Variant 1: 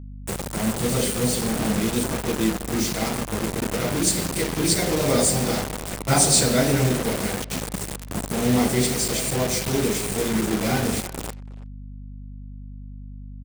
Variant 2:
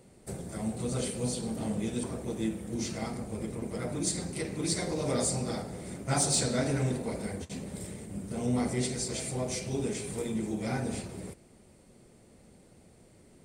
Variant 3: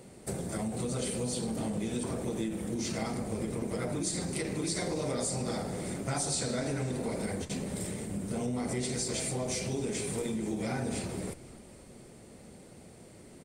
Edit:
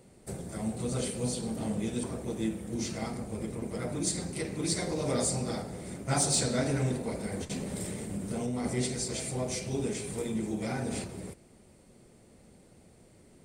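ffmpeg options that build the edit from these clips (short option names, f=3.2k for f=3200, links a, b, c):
-filter_complex "[2:a]asplit=2[a][b];[1:a]asplit=3[c][d][e];[c]atrim=end=7.322[f];[a]atrim=start=7.318:end=8.642[g];[d]atrim=start=8.638:end=10.622[h];[b]atrim=start=10.618:end=11.042[i];[e]atrim=start=11.038[j];[f][g]acrossfade=d=0.004:c1=hsin:c2=hsin[k];[k][h]acrossfade=d=0.004:c1=hsin:c2=hsin[l];[l][i]acrossfade=d=0.004:c1=hsin:c2=hsin[m];[m][j]acrossfade=d=0.004:c1=hsin:c2=hsin"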